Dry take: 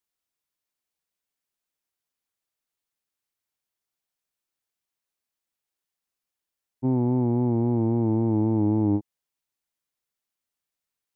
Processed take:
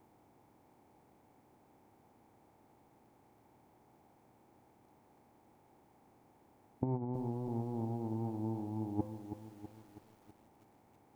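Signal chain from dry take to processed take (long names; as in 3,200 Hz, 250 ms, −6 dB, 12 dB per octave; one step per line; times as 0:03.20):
compressor on every frequency bin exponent 0.6
parametric band 800 Hz +6.5 dB 0.39 octaves
hum removal 85.97 Hz, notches 30
compressor whose output falls as the input rises −28 dBFS, ratio −0.5
feedback echo at a low word length 325 ms, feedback 55%, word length 9 bits, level −9 dB
level −7 dB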